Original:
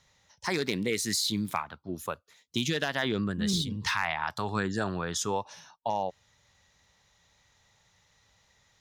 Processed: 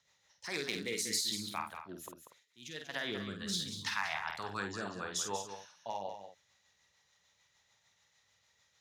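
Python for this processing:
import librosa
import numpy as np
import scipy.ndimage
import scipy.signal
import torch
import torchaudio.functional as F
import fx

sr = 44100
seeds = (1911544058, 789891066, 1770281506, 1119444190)

y = scipy.signal.sosfilt(scipy.signal.butter(2, 60.0, 'highpass', fs=sr, output='sos'), x)
y = fx.low_shelf(y, sr, hz=440.0, db=-11.0)
y = fx.auto_swell(y, sr, attack_ms=389.0, at=(2.03, 2.89))
y = fx.rotary(y, sr, hz=6.7)
y = fx.doubler(y, sr, ms=50.0, db=-6.0)
y = y + 10.0 ** (-9.0 / 20.0) * np.pad(y, (int(190 * sr / 1000.0), 0))[:len(y)]
y = F.gain(torch.from_numpy(y), -3.5).numpy()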